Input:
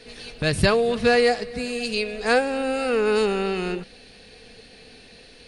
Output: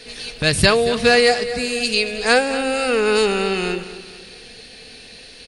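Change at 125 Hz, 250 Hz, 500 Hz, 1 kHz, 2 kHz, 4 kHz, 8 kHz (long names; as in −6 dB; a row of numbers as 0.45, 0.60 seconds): +2.5, +2.5, +3.5, +4.0, +6.5, +9.0, +10.5 decibels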